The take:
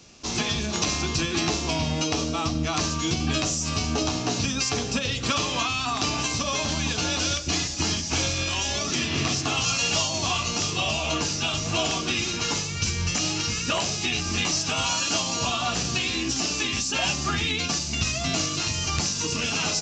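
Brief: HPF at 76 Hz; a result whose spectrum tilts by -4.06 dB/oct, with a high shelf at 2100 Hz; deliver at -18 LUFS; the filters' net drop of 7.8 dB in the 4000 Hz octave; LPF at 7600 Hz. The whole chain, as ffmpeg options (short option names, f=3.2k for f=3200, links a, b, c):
-af "highpass=76,lowpass=7.6k,highshelf=f=2.1k:g=-6.5,equalizer=f=4k:t=o:g=-3.5,volume=11dB"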